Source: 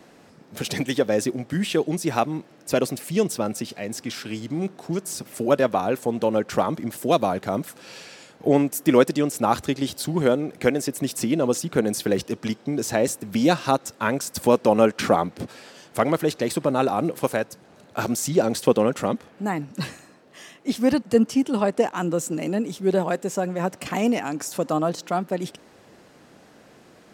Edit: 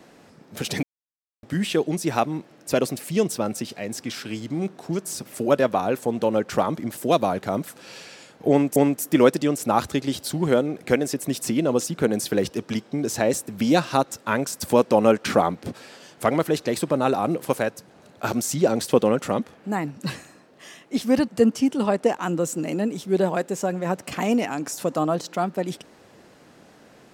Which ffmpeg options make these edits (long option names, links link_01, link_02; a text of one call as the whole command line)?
ffmpeg -i in.wav -filter_complex "[0:a]asplit=4[link_01][link_02][link_03][link_04];[link_01]atrim=end=0.83,asetpts=PTS-STARTPTS,afade=type=out:start_time=0.826:duration=0.004:curve=hsin[link_05];[link_02]atrim=start=0.83:end=1.43,asetpts=PTS-STARTPTS,volume=0[link_06];[link_03]atrim=start=1.43:end=8.762,asetpts=PTS-STARTPTS,afade=type=in:duration=0.004:curve=hsin[link_07];[link_04]atrim=start=8.498[link_08];[link_05][link_06][link_07]concat=n=3:v=0:a=1[link_09];[link_09][link_08]acrossfade=duration=0.004:curve1=hsin:curve2=hsin" out.wav